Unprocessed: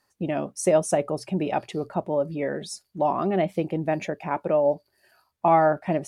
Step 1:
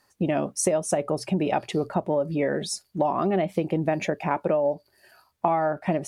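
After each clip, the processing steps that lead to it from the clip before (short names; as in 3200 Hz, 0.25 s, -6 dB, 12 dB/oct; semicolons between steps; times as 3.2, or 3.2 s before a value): compressor 12:1, threshold -25 dBFS, peak gain reduction 12 dB; gain +5.5 dB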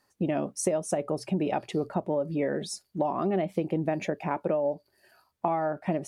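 bell 290 Hz +3.5 dB 2.2 oct; gain -6 dB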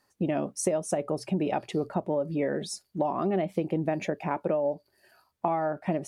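nothing audible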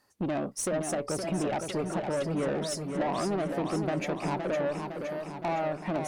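tube stage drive 28 dB, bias 0.25; warbling echo 0.513 s, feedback 62%, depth 127 cents, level -6 dB; gain +2 dB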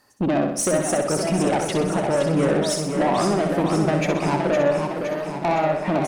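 feedback echo 63 ms, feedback 52%, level -6 dB; gain +8.5 dB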